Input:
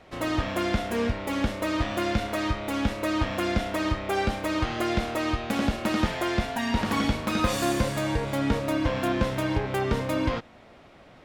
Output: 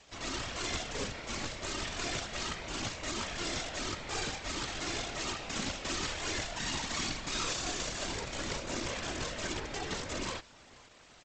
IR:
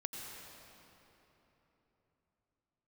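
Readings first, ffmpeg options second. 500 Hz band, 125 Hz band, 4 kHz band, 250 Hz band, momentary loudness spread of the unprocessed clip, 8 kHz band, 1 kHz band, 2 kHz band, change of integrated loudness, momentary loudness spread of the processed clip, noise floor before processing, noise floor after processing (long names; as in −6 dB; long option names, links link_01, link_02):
−13.0 dB, −14.0 dB, −1.5 dB, −15.5 dB, 3 LU, +3.5 dB, −10.5 dB, −6.5 dB, −8.5 dB, 4 LU, −52 dBFS, −57 dBFS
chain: -filter_complex "[0:a]lowshelf=frequency=240:gain=-5.5,acrossover=split=590[link_01][link_02];[link_02]crystalizer=i=4.5:c=0[link_03];[link_01][link_03]amix=inputs=2:normalize=0,asoftclip=type=hard:threshold=-24.5dB,equalizer=frequency=95:width=6:gain=-5.5,asplit=2[link_04][link_05];[link_05]adelay=471,lowpass=frequency=2200:poles=1,volume=-22dB,asplit=2[link_06][link_07];[link_07]adelay=471,lowpass=frequency=2200:poles=1,volume=0.41,asplit=2[link_08][link_09];[link_09]adelay=471,lowpass=frequency=2200:poles=1,volume=0.41[link_10];[link_04][link_06][link_08][link_10]amix=inputs=4:normalize=0,aresample=16000,acrusher=bits=5:dc=4:mix=0:aa=0.000001,aresample=44100,afftfilt=real='hypot(re,im)*cos(2*PI*random(0))':imag='hypot(re,im)*sin(2*PI*random(1))':win_size=512:overlap=0.75"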